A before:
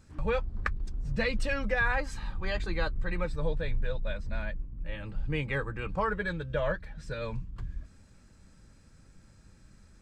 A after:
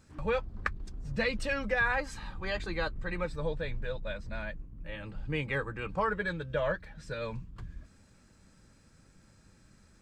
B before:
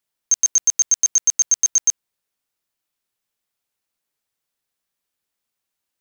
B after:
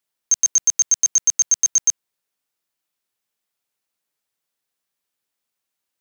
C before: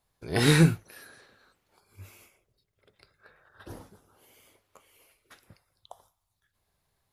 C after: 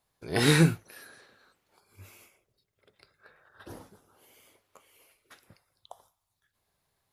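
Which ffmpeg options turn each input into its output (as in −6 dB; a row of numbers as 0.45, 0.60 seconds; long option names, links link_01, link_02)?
-af "lowshelf=frequency=90:gain=-8.5"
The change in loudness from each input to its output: −1.0, 0.0, −1.0 LU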